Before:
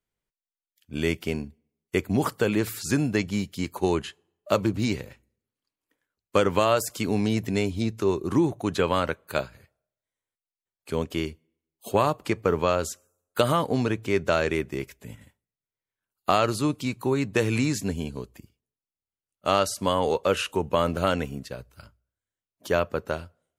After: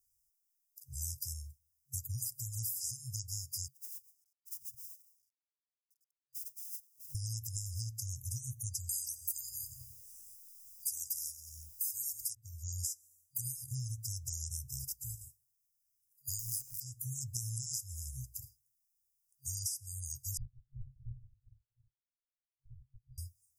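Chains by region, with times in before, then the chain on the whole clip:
0:03.68–0:07.15: three sine waves on the formant tracks + log-companded quantiser 8 bits + amplitude tremolo 7.1 Hz, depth 29%
0:08.89–0:12.35: repeating echo 89 ms, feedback 56%, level −21.5 dB + every bin compressed towards the loudest bin 10 to 1
0:16.39–0:16.80: converter with a step at zero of −29 dBFS + parametric band 14,000 Hz +7 dB 0.91 octaves + downward compressor, threshold −23 dBFS
0:20.37–0:23.18: lower of the sound and its delayed copy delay 6.5 ms + leveller curve on the samples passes 1 + voice inversion scrambler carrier 2,900 Hz
whole clip: first-order pre-emphasis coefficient 0.8; brick-wall band-stop 130–4,800 Hz; downward compressor 12 to 1, threshold −49 dBFS; level +13.5 dB

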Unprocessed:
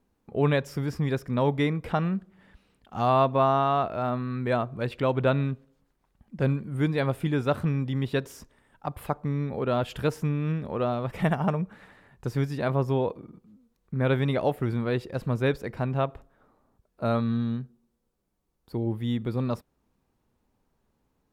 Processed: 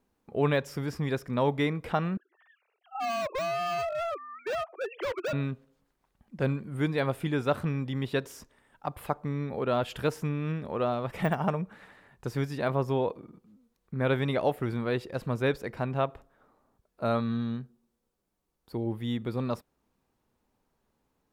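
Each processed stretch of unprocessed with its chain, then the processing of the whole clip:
0:02.17–0:05.33: three sine waves on the formant tracks + Butterworth high-pass 360 Hz 72 dB per octave + hard clipping −28 dBFS
whole clip: de-essing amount 90%; low-shelf EQ 250 Hz −6 dB

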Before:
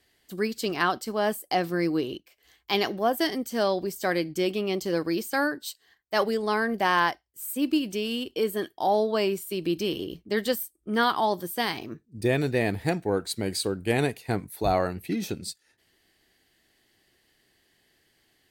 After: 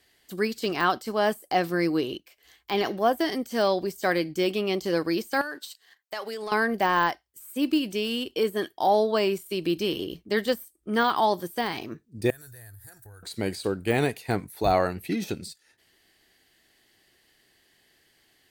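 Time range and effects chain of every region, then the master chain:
0:05.41–0:06.52: high-pass filter 640 Hz 6 dB per octave + downward compressor 16 to 1, threshold −35 dBFS + leveller curve on the samples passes 1
0:12.30–0:13.23: drawn EQ curve 110 Hz 0 dB, 170 Hz −28 dB, 400 Hz −24 dB, 730 Hz −20 dB, 1,100 Hz −18 dB, 1,600 Hz −6 dB, 2,300 Hz −27 dB, 4,400 Hz −11 dB, 12,000 Hz +13 dB + downward compressor 12 to 1, threshold −44 dBFS
whole clip: de-essing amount 85%; low-shelf EQ 450 Hz −4 dB; level +3.5 dB

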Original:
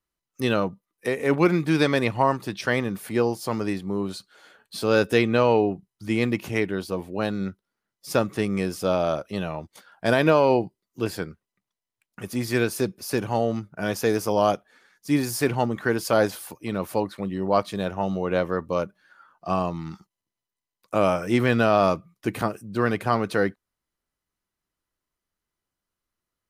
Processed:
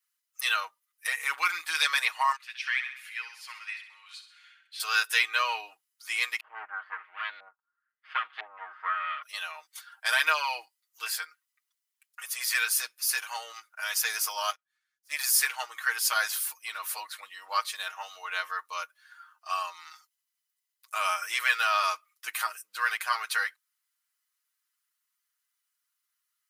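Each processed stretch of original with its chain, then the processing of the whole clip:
0:02.36–0:04.80: resonant band-pass 2,400 Hz, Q 2.4 + repeating echo 65 ms, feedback 51%, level −9.5 dB
0:06.40–0:09.23: lower of the sound and its delayed copy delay 0.63 ms + auto-filter low-pass saw up 1 Hz 710–4,200 Hz + high-frequency loss of the air 500 metres
0:14.50–0:15.19: gain on one half-wave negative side −7 dB + expander for the loud parts 2.5 to 1, over −35 dBFS
whole clip: high-pass filter 1,200 Hz 24 dB per octave; high-shelf EQ 6,900 Hz +8.5 dB; comb filter 6.4 ms, depth 84%

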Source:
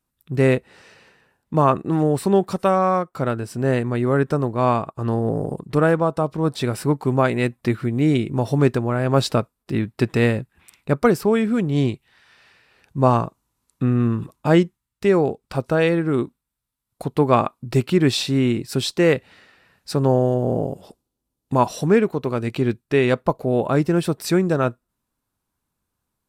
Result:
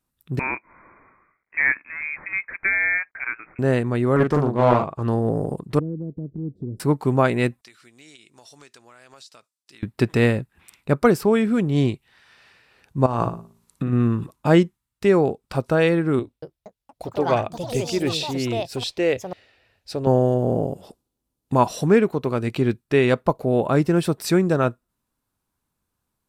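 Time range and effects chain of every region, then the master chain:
0:00.39–0:03.59: variable-slope delta modulation 64 kbit/s + high-pass filter 640 Hz 24 dB per octave + voice inversion scrambler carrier 2,900 Hz
0:04.16–0:05.02: high-shelf EQ 9,600 Hz −10 dB + double-tracking delay 41 ms −4 dB + highs frequency-modulated by the lows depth 0.42 ms
0:05.79–0:06.80: inverse Chebyshev low-pass filter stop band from 930 Hz, stop band 50 dB + downward compressor 2 to 1, threshold −30 dBFS
0:07.61–0:09.83: resonant band-pass 6,200 Hz, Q 1.4 + downward compressor, threshold −43 dBFS
0:13.06–0:13.93: compressor whose output falls as the input rises −23 dBFS + hum removal 56.61 Hz, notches 7 + flutter between parallel walls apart 9.9 metres, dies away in 0.36 s
0:16.19–0:20.07: drawn EQ curve 110 Hz 0 dB, 150 Hz −15 dB, 280 Hz −7 dB, 660 Hz −1 dB, 1,100 Hz −12 dB, 1,800 Hz −7 dB, 2,600 Hz −2 dB, 5,200 Hz −4 dB, 8,300 Hz −9 dB + delay with pitch and tempo change per echo 234 ms, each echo +5 semitones, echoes 3, each echo −6 dB
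whole clip: no processing

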